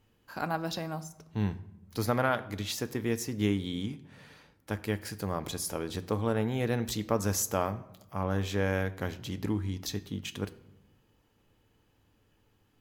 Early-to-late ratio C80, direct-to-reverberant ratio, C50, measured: 19.0 dB, 10.0 dB, 17.0 dB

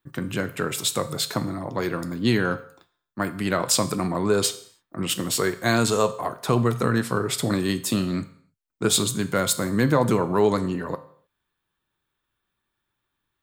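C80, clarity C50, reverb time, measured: 18.5 dB, 15.0 dB, no single decay rate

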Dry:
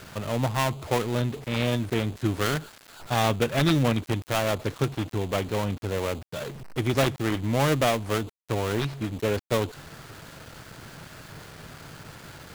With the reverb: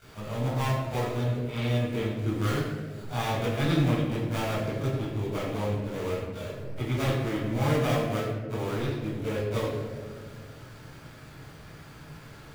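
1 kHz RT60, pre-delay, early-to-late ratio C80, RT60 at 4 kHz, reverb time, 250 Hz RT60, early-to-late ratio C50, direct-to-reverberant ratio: 1.3 s, 19 ms, 2.5 dB, 0.80 s, 1.7 s, 2.5 s, 0.0 dB, -13.0 dB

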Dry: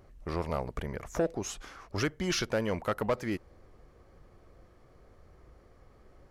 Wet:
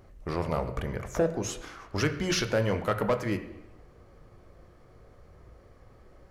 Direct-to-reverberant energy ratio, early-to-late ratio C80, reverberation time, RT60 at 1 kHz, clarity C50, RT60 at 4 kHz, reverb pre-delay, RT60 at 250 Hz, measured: 7.5 dB, 13.0 dB, 0.85 s, 0.85 s, 11.0 dB, 0.90 s, 19 ms, 0.85 s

